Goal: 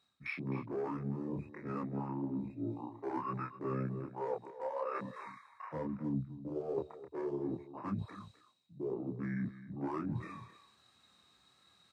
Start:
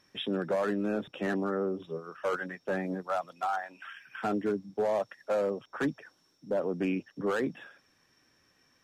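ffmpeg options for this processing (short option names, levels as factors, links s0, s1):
-filter_complex "[0:a]afwtdn=0.00794,highpass=f=86:w=0.5412,highpass=f=86:w=1.3066,highshelf=f=4800:g=10.5,areverse,acompressor=threshold=0.00316:ratio=8,areverse,flanger=delay=17:depth=4.5:speed=1.6,asetrate=41625,aresample=44100,atempo=1.05946,asplit=2[s0][s1];[s1]aecho=0:1:192:0.188[s2];[s0][s2]amix=inputs=2:normalize=0,asetrate=32667,aresample=44100,volume=6.31"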